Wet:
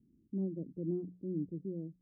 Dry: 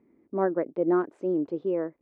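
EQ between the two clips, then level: four-pole ladder low-pass 230 Hz, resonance 20%; bass shelf 63 Hz +11.5 dB; hum notches 60/120/180 Hz; +6.5 dB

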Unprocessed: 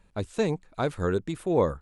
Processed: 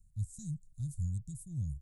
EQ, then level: elliptic band-stop 130–7400 Hz, stop band 50 dB; 0.0 dB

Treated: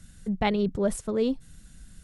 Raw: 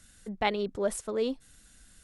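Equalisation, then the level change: peaking EQ 160 Hz +8.5 dB 0.62 oct; bass shelf 230 Hz +11.5 dB; 0.0 dB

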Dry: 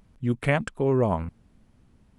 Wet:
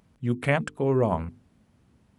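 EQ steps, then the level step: high-pass 70 Hz; hum notches 50/100/150/200/250/300/350/400/450 Hz; 0.0 dB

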